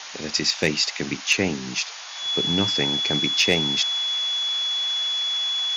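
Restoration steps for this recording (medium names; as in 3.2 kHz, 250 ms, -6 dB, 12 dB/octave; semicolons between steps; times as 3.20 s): clip repair -8.5 dBFS; band-stop 3.4 kHz, Q 30; noise print and reduce 30 dB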